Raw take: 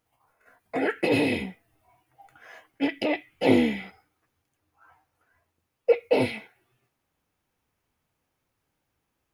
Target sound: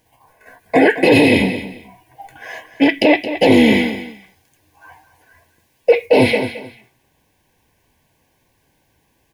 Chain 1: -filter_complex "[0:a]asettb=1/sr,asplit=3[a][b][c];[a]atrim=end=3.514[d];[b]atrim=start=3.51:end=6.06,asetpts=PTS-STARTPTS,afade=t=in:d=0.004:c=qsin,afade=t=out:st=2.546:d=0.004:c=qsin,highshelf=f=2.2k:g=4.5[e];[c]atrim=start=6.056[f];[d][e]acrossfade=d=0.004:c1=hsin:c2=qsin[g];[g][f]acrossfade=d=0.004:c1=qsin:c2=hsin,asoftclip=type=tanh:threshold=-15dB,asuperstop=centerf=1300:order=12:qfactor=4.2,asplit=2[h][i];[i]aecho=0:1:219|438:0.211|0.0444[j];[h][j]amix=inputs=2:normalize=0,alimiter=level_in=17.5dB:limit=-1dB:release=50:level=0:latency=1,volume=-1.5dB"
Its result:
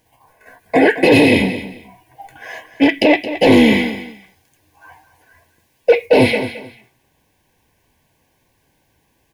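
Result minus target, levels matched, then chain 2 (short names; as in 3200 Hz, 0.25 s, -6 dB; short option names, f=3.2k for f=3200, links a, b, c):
soft clip: distortion +12 dB
-filter_complex "[0:a]asettb=1/sr,asplit=3[a][b][c];[a]atrim=end=3.514[d];[b]atrim=start=3.51:end=6.06,asetpts=PTS-STARTPTS,afade=t=in:d=0.004:c=qsin,afade=t=out:st=2.546:d=0.004:c=qsin,highshelf=f=2.2k:g=4.5[e];[c]atrim=start=6.056[f];[d][e]acrossfade=d=0.004:c1=hsin:c2=qsin[g];[g][f]acrossfade=d=0.004:c1=qsin:c2=hsin,asoftclip=type=tanh:threshold=-7dB,asuperstop=centerf=1300:order=12:qfactor=4.2,asplit=2[h][i];[i]aecho=0:1:219|438:0.211|0.0444[j];[h][j]amix=inputs=2:normalize=0,alimiter=level_in=17.5dB:limit=-1dB:release=50:level=0:latency=1,volume=-1.5dB"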